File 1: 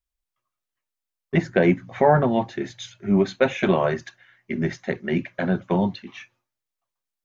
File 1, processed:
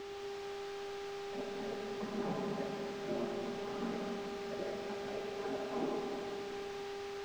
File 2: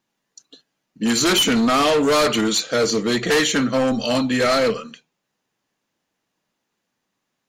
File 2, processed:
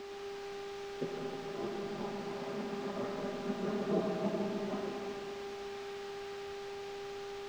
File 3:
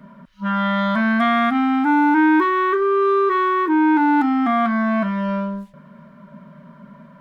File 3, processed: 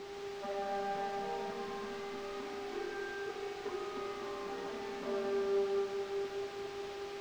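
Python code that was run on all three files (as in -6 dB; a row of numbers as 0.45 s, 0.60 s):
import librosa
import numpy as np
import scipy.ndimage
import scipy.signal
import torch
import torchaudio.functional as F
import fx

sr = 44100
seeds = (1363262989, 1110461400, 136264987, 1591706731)

y = fx.spec_gate(x, sr, threshold_db=-20, keep='weak')
y = y + 1.0 * np.pad(y, (int(4.9 * sr / 1000.0), 0))[:len(y)]
y = fx.over_compress(y, sr, threshold_db=-37.0, ratio=-1.0)
y = fx.dmg_buzz(y, sr, base_hz=400.0, harmonics=15, level_db=-43.0, tilt_db=-3, odd_only=False)
y = fx.ladder_bandpass(y, sr, hz=270.0, resonance_pct=40)
y = fx.quant_dither(y, sr, seeds[0], bits=10, dither='triangular')
y = fx.air_absorb(y, sr, metres=190.0)
y = fx.rev_freeverb(y, sr, rt60_s=3.0, hf_ratio=0.95, predelay_ms=25, drr_db=-0.5)
y = y * 10.0 ** (14.5 / 20.0)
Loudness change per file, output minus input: -18.0 LU, -21.0 LU, -21.0 LU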